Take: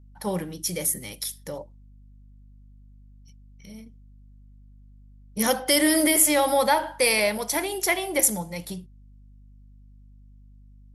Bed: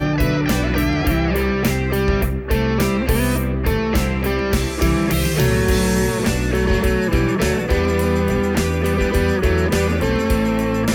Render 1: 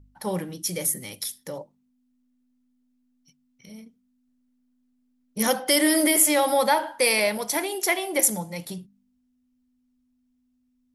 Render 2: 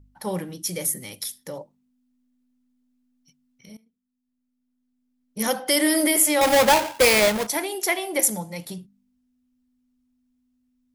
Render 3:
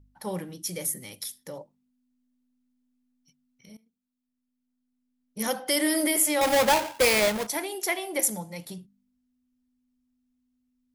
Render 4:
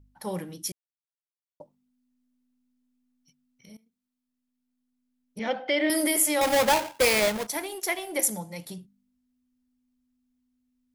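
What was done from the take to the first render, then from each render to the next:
de-hum 50 Hz, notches 4
3.77–5.81 fade in, from -19.5 dB; 6.41–7.47 half-waves squared off
gain -4.5 dB
0.72–1.6 mute; 5.39–5.9 speaker cabinet 200–3600 Hz, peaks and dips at 650 Hz +6 dB, 1100 Hz -7 dB, 2300 Hz +6 dB; 6.42–8.12 G.711 law mismatch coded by A

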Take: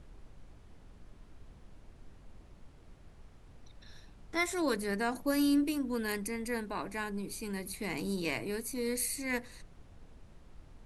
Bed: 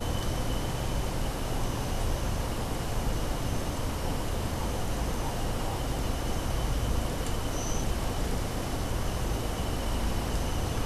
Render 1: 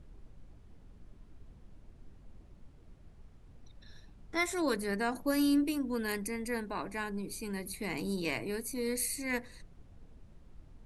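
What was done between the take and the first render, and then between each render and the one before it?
denoiser 6 dB, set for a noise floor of -57 dBFS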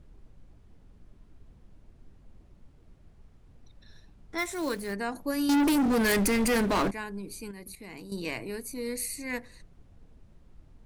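4.38–4.93 short-mantissa float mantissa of 2-bit; 5.49–6.91 sample leveller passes 5; 7.51–8.12 level quantiser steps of 11 dB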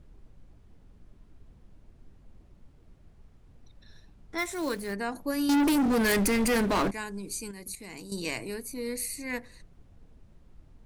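6.94–8.54 bell 7200 Hz +12 dB 1.1 oct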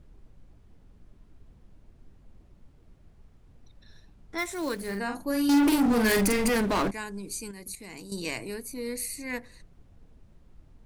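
4.75–6.5 doubler 46 ms -5 dB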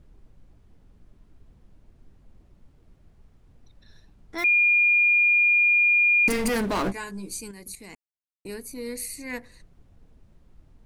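4.44–6.28 bleep 2420 Hz -16 dBFS; 6.84–7.41 doubler 16 ms -4.5 dB; 7.95–8.45 mute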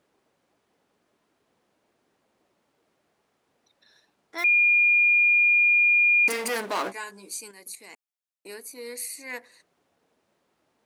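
HPF 480 Hz 12 dB/oct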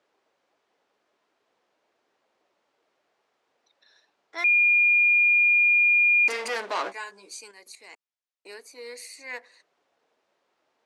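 three-band isolator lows -15 dB, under 360 Hz, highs -23 dB, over 7400 Hz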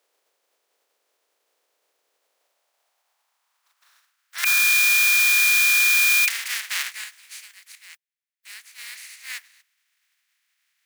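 spectral contrast lowered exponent 0.22; high-pass sweep 470 Hz -> 1900 Hz, 2.17–4.72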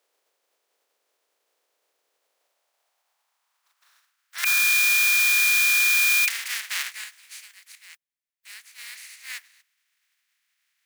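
gain -2 dB

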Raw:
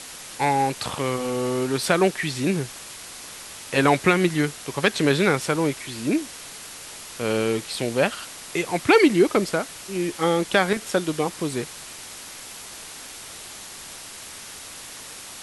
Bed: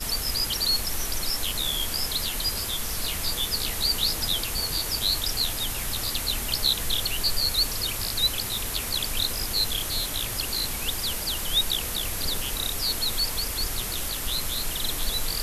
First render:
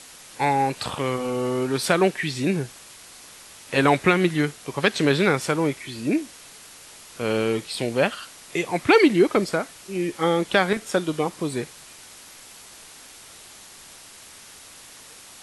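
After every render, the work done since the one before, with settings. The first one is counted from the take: noise print and reduce 6 dB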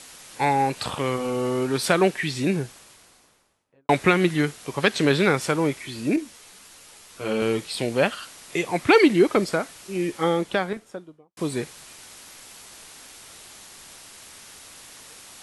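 2.4–3.89 studio fade out; 6.16–7.42 ensemble effect; 10.05–11.37 studio fade out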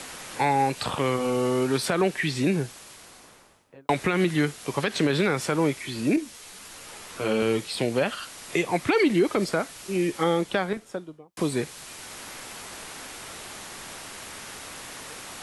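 limiter -11.5 dBFS, peak gain reduction 8.5 dB; three-band squash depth 40%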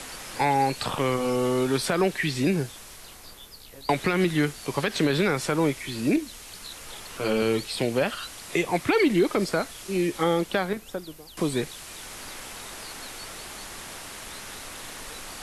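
add bed -19.5 dB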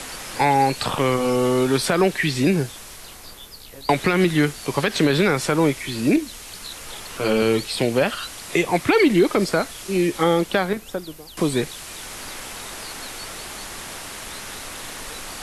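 gain +5 dB

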